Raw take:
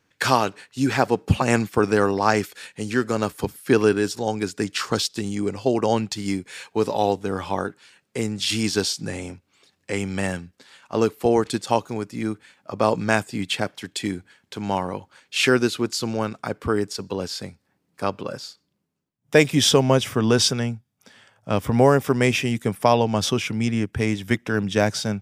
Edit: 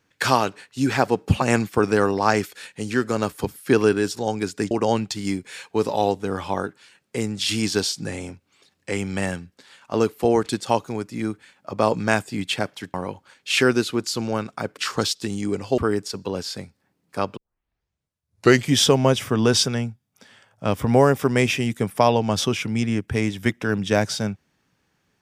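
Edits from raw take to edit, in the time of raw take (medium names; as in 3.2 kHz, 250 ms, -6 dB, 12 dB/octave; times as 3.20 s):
4.71–5.72 s: move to 16.63 s
13.95–14.80 s: delete
18.22 s: tape start 1.40 s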